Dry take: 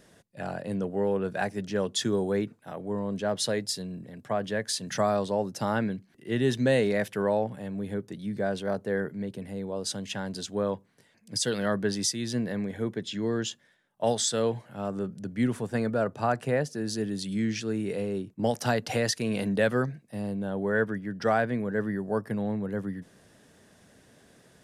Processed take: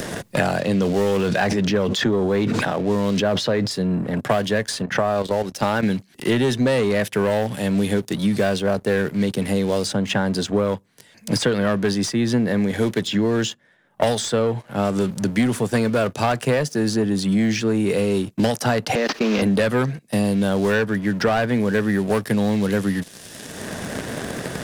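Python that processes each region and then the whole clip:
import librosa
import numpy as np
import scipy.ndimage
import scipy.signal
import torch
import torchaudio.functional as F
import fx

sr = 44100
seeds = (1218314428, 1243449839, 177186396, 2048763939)

y = fx.chain(x, sr, fx.cheby1_lowpass(hz=4900.0, order=2),
    fx.sustainer(db_per_s=31.0), at=(0.59, 3.71))
y = fx.chain(y, sr, fx.bass_treble(bass_db=-5, treble_db=-7),
    fx.level_steps(step_db=10), at=(4.82, 5.83))
y = fx.chain(y, sr, fx.delta_mod(bps=32000, step_db=-30.5),
    fx.steep_highpass(hz=200.0, slope=48),
    fx.level_steps(step_db=16), at=(18.95, 19.42))
y = fx.leveller(y, sr, passes=2)
y = fx.band_squash(y, sr, depth_pct=100)
y = y * librosa.db_to_amplitude(2.0)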